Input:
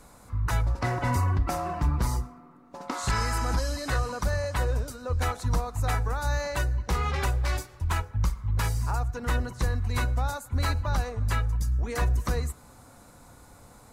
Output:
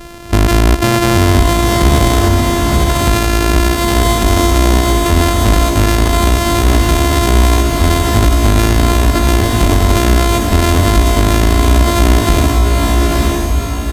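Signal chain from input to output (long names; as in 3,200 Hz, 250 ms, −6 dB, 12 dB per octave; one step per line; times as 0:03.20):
samples sorted by size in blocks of 128 samples
downsampling to 32,000 Hz
on a send: feedback delay with all-pass diffusion 949 ms, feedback 40%, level −5 dB
on the sum: boost into a limiter +21 dB
level −1 dB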